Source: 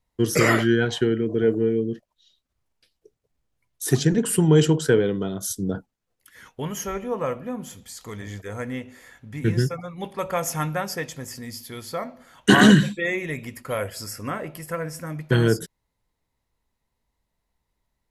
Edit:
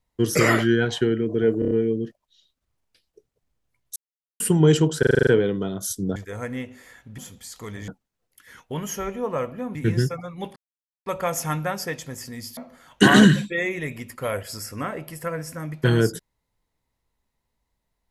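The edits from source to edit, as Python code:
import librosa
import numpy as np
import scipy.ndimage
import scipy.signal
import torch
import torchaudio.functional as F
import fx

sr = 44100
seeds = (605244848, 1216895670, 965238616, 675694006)

y = fx.edit(x, sr, fx.stutter(start_s=1.59, slice_s=0.03, count=5),
    fx.silence(start_s=3.84, length_s=0.44),
    fx.stutter(start_s=4.87, slice_s=0.04, count=8),
    fx.swap(start_s=5.76, length_s=1.87, other_s=8.33, other_length_s=1.02),
    fx.insert_silence(at_s=10.16, length_s=0.5),
    fx.cut(start_s=11.67, length_s=0.37), tone=tone)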